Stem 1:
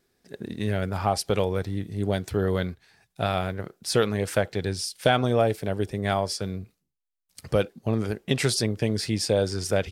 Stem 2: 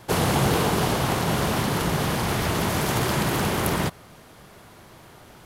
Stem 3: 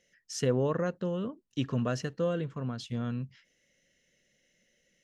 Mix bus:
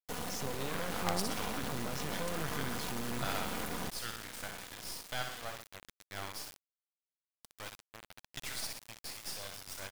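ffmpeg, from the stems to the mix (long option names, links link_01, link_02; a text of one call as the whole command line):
ffmpeg -i stem1.wav -i stem2.wav -i stem3.wav -filter_complex "[0:a]highpass=frequency=810:width=0.5412,highpass=frequency=810:width=1.3066,volume=-4.5dB,asplit=2[link_01][link_02];[link_02]volume=-5dB[link_03];[1:a]dynaudnorm=framelen=110:gausssize=13:maxgain=9.5dB,aecho=1:1:4.1:0.92,acompressor=threshold=-19dB:ratio=6,volume=-13.5dB[link_04];[2:a]alimiter=level_in=1dB:limit=-24dB:level=0:latency=1,volume=-1dB,aeval=exprs='val(0)+0.000794*(sin(2*PI*60*n/s)+sin(2*PI*2*60*n/s)/2+sin(2*PI*3*60*n/s)/3+sin(2*PI*4*60*n/s)/4+sin(2*PI*5*60*n/s)/5)':channel_layout=same,volume=3dB,asplit=2[link_05][link_06];[link_06]apad=whole_len=437031[link_07];[link_01][link_07]sidechaingate=range=-33dB:threshold=-55dB:ratio=16:detection=peak[link_08];[link_04][link_05]amix=inputs=2:normalize=0,dynaudnorm=framelen=230:gausssize=5:maxgain=4dB,alimiter=level_in=2dB:limit=-24dB:level=0:latency=1:release=37,volume=-2dB,volume=0dB[link_09];[link_03]aecho=0:1:62|124|186|248|310|372|434|496:1|0.53|0.281|0.149|0.0789|0.0418|0.0222|0.0117[link_10];[link_08][link_09][link_10]amix=inputs=3:normalize=0,acrusher=bits=4:dc=4:mix=0:aa=0.000001" out.wav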